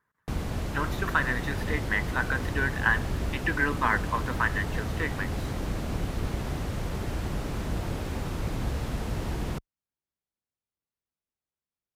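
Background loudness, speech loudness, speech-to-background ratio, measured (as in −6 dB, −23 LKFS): −33.0 LKFS, −29.5 LKFS, 3.5 dB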